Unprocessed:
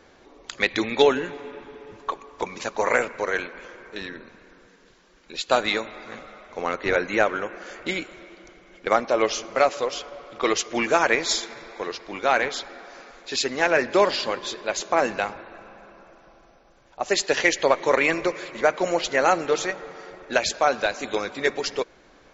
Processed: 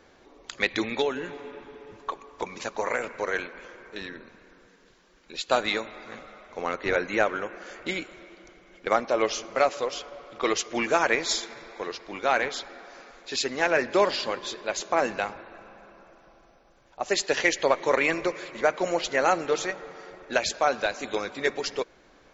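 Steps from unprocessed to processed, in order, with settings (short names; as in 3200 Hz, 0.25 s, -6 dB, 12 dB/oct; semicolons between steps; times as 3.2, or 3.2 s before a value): 0.86–3.04 compressor 2.5:1, threshold -22 dBFS, peak gain reduction 7 dB; gain -3 dB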